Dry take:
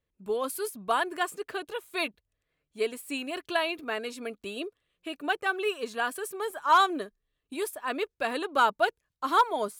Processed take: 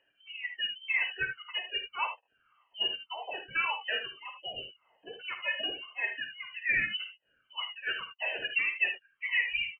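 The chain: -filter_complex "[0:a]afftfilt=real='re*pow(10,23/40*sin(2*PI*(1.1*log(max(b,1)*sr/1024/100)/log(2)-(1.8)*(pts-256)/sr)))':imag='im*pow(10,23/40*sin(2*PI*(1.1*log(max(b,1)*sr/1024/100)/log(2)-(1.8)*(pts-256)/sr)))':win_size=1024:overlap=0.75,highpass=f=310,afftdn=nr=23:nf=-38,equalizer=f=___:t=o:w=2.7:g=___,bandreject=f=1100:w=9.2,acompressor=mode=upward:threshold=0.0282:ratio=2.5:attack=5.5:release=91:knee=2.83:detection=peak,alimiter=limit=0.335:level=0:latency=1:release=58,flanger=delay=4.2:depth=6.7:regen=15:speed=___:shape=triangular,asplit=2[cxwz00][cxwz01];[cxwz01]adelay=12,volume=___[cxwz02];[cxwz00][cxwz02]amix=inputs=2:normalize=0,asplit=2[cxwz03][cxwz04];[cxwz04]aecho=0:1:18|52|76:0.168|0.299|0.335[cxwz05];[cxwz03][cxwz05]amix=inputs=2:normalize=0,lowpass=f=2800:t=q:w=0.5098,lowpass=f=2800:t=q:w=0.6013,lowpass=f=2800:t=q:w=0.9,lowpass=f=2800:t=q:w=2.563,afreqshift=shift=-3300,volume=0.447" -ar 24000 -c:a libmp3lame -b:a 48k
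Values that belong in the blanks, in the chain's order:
1700, 5, 1.2, 0.316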